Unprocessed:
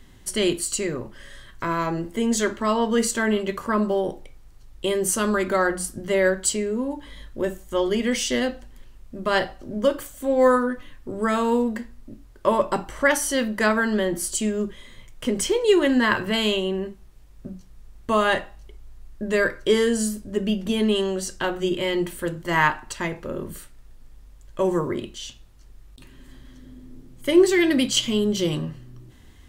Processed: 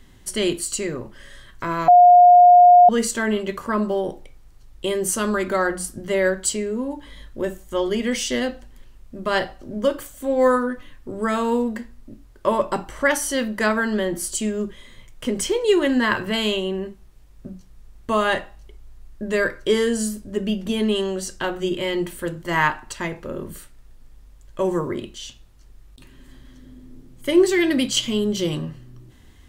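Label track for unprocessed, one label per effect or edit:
1.880000	2.890000	bleep 712 Hz -6.5 dBFS

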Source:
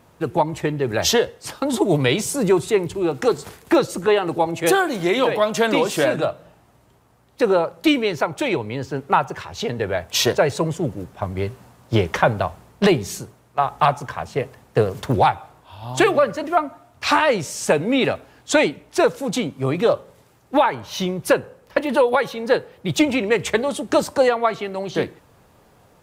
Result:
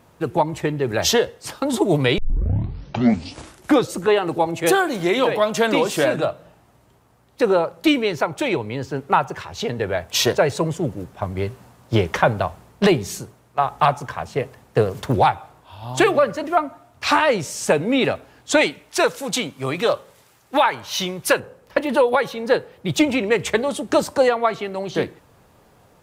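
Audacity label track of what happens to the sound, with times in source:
2.180000	2.180000	tape start 1.75 s
18.610000	21.400000	tilt shelf lows -5.5 dB, about 840 Hz

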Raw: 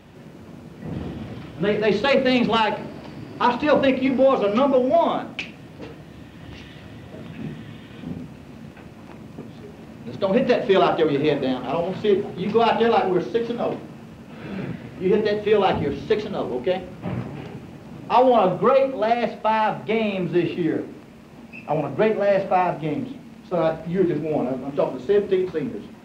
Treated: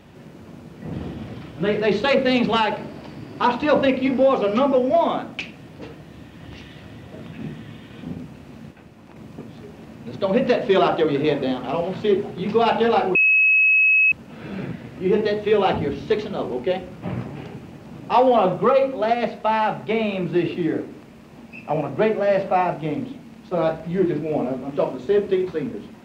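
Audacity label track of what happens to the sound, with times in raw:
8.710000	9.160000	gain -4.5 dB
13.150000	14.120000	bleep 2570 Hz -12.5 dBFS

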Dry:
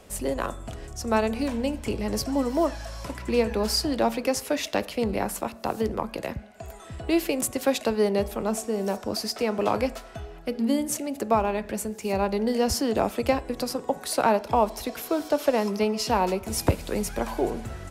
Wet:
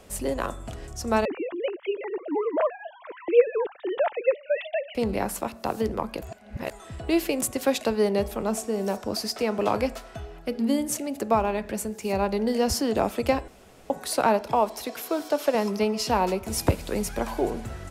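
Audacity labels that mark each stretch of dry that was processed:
1.250000	4.950000	sine-wave speech
6.220000	6.710000	reverse
13.480000	13.900000	room tone
14.520000	15.550000	HPF 260 Hz 6 dB/oct

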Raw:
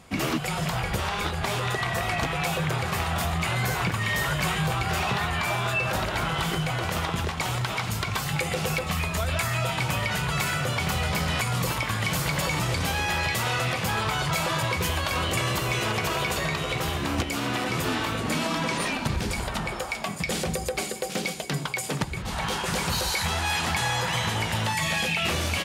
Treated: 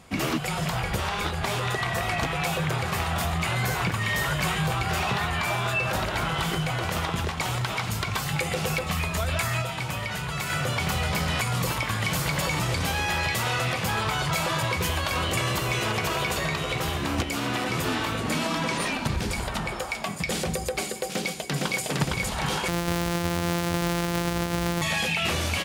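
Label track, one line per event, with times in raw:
9.620000	10.500000	gain -4 dB
21.080000	21.830000	echo throw 0.46 s, feedback 65%, level -1.5 dB
22.680000	24.820000	sample sorter in blocks of 256 samples

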